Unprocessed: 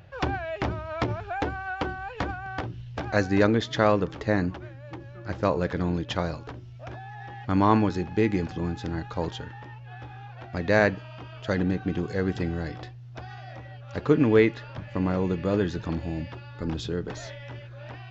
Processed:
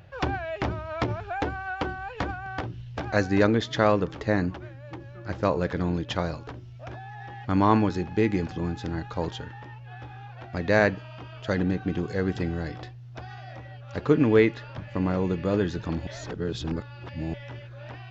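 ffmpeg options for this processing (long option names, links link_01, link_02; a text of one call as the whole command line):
ffmpeg -i in.wav -filter_complex "[0:a]asplit=3[link_01][link_02][link_03];[link_01]atrim=end=16.072[link_04];[link_02]atrim=start=16.068:end=17.342,asetpts=PTS-STARTPTS,areverse[link_05];[link_03]atrim=start=17.338[link_06];[link_04][link_05]acrossfade=duration=0.004:curve1=hsin:curve2=hsin[link_07];[link_07][link_06]acrossfade=duration=0.004:curve1=hsin:curve2=hsin" out.wav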